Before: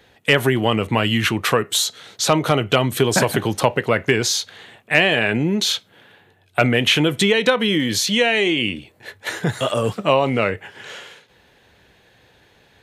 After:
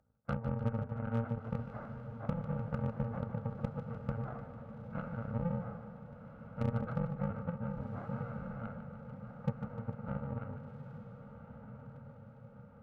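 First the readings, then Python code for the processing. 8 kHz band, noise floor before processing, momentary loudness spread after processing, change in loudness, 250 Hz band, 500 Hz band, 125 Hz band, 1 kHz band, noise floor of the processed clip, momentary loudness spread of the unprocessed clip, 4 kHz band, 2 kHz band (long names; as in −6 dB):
below −40 dB, −56 dBFS, 15 LU, −21.0 dB, −17.5 dB, −23.5 dB, −12.0 dB, −22.0 dB, −54 dBFS, 9 LU, below −40 dB, −32.5 dB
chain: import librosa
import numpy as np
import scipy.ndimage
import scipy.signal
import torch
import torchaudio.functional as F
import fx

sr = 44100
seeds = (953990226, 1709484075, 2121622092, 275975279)

y = fx.bit_reversed(x, sr, seeds[0], block=128)
y = scipy.ndimage.gaussian_filter1d(y, 8.2, mode='constant')
y = fx.peak_eq(y, sr, hz=67.0, db=-4.0, octaves=2.6)
y = fx.notch(y, sr, hz=400.0, q=12.0)
y = fx.cheby_harmonics(y, sr, harmonics=(3,), levels_db=(-14,), full_scale_db=-16.5)
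y = np.clip(y, -10.0 ** (-22.0 / 20.0), 10.0 ** (-22.0 / 20.0))
y = fx.echo_diffused(y, sr, ms=1428, feedback_pct=53, wet_db=-10.0)
y = fx.echo_warbled(y, sr, ms=150, feedback_pct=61, rate_hz=2.8, cents=71, wet_db=-11)
y = y * librosa.db_to_amplitude(-2.0)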